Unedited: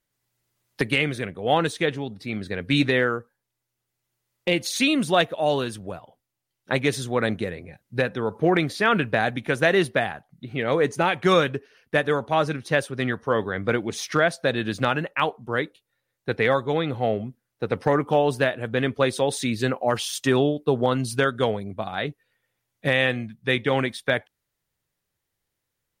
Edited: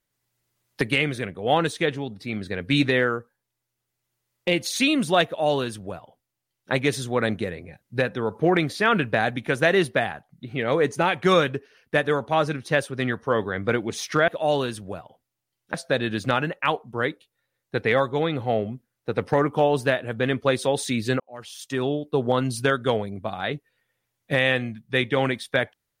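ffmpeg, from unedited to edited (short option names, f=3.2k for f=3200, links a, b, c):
-filter_complex "[0:a]asplit=4[a][b][c][d];[a]atrim=end=14.282[e];[b]atrim=start=5.258:end=6.722[f];[c]atrim=start=14.278:end=19.74,asetpts=PTS-STARTPTS,afade=t=out:st=5.458:d=0.004:c=hsin[g];[d]atrim=start=19.74,asetpts=PTS-STARTPTS,afade=t=in:d=1.16[h];[e][f]acrossfade=d=0.004:c1=hsin:c2=hsin[i];[g][h]concat=n=2:v=0:a=1[j];[i][j]acrossfade=d=0.004:c1=hsin:c2=hsin"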